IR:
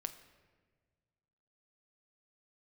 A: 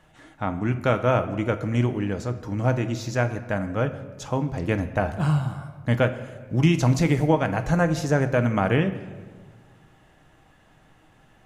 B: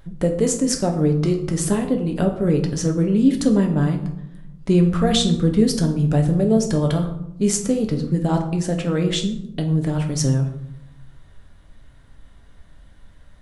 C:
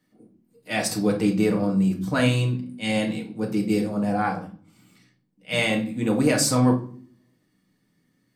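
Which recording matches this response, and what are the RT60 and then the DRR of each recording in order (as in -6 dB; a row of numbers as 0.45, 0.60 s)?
A; 1.5 s, 0.80 s, not exponential; 8.0, 3.0, 0.0 dB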